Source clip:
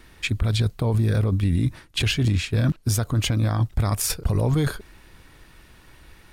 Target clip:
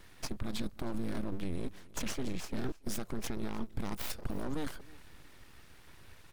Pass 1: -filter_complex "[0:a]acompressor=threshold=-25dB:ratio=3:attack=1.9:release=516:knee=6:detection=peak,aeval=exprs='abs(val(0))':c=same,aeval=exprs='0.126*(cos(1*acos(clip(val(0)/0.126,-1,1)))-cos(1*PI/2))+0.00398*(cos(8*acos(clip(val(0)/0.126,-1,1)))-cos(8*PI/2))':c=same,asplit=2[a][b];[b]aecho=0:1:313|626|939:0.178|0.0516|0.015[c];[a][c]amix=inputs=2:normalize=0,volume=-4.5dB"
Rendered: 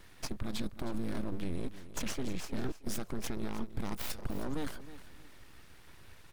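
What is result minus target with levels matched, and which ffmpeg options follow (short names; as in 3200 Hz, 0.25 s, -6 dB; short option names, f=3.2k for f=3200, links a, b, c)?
echo-to-direct +7.5 dB
-filter_complex "[0:a]acompressor=threshold=-25dB:ratio=3:attack=1.9:release=516:knee=6:detection=peak,aeval=exprs='abs(val(0))':c=same,aeval=exprs='0.126*(cos(1*acos(clip(val(0)/0.126,-1,1)))-cos(1*PI/2))+0.00398*(cos(8*acos(clip(val(0)/0.126,-1,1)))-cos(8*PI/2))':c=same,asplit=2[a][b];[b]aecho=0:1:313|626:0.075|0.0217[c];[a][c]amix=inputs=2:normalize=0,volume=-4.5dB"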